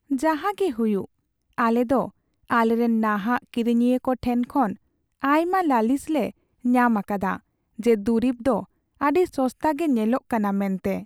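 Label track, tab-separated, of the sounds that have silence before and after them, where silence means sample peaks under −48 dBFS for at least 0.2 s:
1.580000	2.100000	sound
2.480000	4.760000	sound
5.200000	6.310000	sound
6.640000	7.390000	sound
7.780000	8.650000	sound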